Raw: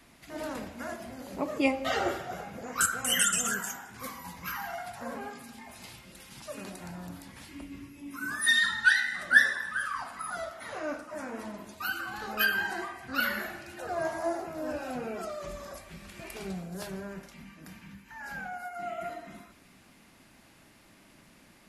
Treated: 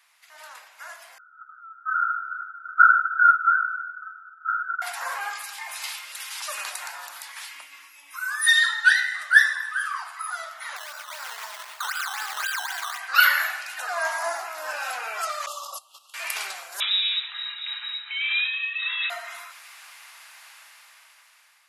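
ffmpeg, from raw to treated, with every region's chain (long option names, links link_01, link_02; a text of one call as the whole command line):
ffmpeg -i in.wav -filter_complex "[0:a]asettb=1/sr,asplit=3[link_01][link_02][link_03];[link_01]atrim=end=1.184[link_04];[link_02]atrim=start=1.18:end=4.82,asetpts=PTS-STARTPTS,afade=type=in:duration=0.004:curve=qsin,afade=type=out:start_time=3.636:duration=0.004:curve=qsin,asuperpass=centerf=1400:order=12:qfactor=5.8,acontrast=23[link_05];[link_03]atrim=start=4.816[link_06];[link_04][link_05]acrossfade=duration=0.004:curve1=hsin:curve2=qsin[link_07];[link_07][link_06]acrossfade=duration=0.004:curve1=qsin:curve2=hsin,asettb=1/sr,asplit=3[link_08][link_09][link_10];[link_08]atrim=end=10.764[link_11];[link_09]atrim=start=10.76:end=12.98,asetpts=PTS-STARTPTS,afade=type=in:duration=0.004:curve=qsin,afade=type=out:start_time=2.216:duration=0.004:curve=qsin,acompressor=threshold=-37dB:ratio=10:attack=3.2:release=140:knee=1:detection=peak,acrusher=samples=13:mix=1:aa=0.000001:lfo=1:lforange=13:lforate=3.9[link_12];[link_10]atrim=start=12.976[link_13];[link_11][link_12]acrossfade=duration=0.004:curve1=hsin:curve2=qsin[link_14];[link_14][link_13]acrossfade=duration=0.004:curve1=qsin:curve2=hsin,asettb=1/sr,asplit=3[link_15][link_16][link_17];[link_15]atrim=end=15.464[link_18];[link_16]atrim=start=15.46:end=16.14,asetpts=PTS-STARTPTS,afade=type=in:duration=0.004:curve=qsin,afade=type=out:start_time=0.676:duration=0.004:curve=qsin,agate=range=-17dB:threshold=-44dB:ratio=16:release=100:detection=peak,asuperstop=centerf=1900:order=20:qfactor=1.4[link_19];[link_17]atrim=start=16.136[link_20];[link_18][link_19]acrossfade=duration=0.004:curve1=hsin:curve2=qsin[link_21];[link_21][link_20]acrossfade=duration=0.004:curve1=qsin:curve2=hsin,asettb=1/sr,asplit=3[link_22][link_23][link_24];[link_22]atrim=end=16.804[link_25];[link_23]atrim=start=16.8:end=19.1,asetpts=PTS-STARTPTS,afade=type=in:duration=0.004:curve=qsin,afade=type=out:start_time=2.296:duration=0.004:curve=qsin,asuperstop=centerf=710:order=4:qfactor=3.9,lowpass=frequency=3400:width_type=q:width=0.5098,lowpass=frequency=3400:width_type=q:width=0.6013,lowpass=frequency=3400:width_type=q:width=0.9,lowpass=frequency=3400:width_type=q:width=2.563,afreqshift=-4000[link_26];[link_24]atrim=start=19.096[link_27];[link_25][link_26]acrossfade=duration=0.004:curve1=hsin:curve2=qsin[link_28];[link_28][link_27]acrossfade=duration=0.004:curve1=qsin:curve2=hsin,highpass=frequency=970:width=0.5412,highpass=frequency=970:width=1.3066,dynaudnorm=framelen=640:gausssize=5:maxgain=16.5dB,volume=-1dB" out.wav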